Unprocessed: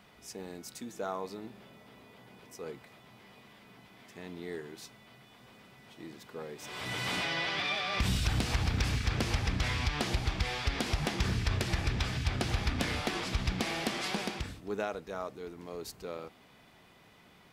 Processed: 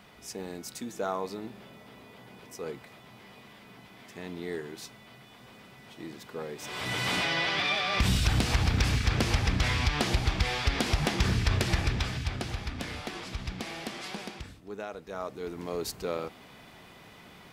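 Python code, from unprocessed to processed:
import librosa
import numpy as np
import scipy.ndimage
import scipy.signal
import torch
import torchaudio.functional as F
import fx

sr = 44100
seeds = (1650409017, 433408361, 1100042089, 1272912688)

y = fx.gain(x, sr, db=fx.line((11.75, 4.5), (12.64, -4.5), (14.82, -4.5), (15.58, 8.0)))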